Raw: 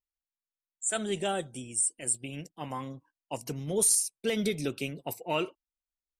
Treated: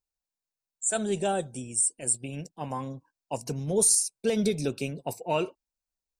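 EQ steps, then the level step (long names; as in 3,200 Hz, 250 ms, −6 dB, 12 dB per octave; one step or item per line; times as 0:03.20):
thirty-one-band graphic EQ 315 Hz −5 dB, 1,250 Hz −7 dB, 2,000 Hz −11 dB, 3,150 Hz −10 dB, 12,500 Hz −12 dB
+4.5 dB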